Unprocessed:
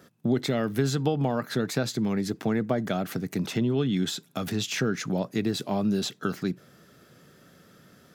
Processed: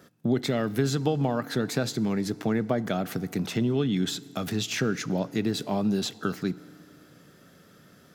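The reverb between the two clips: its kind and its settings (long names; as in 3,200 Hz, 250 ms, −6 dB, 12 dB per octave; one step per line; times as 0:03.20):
feedback delay network reverb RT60 2.7 s, high-frequency decay 0.7×, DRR 18.5 dB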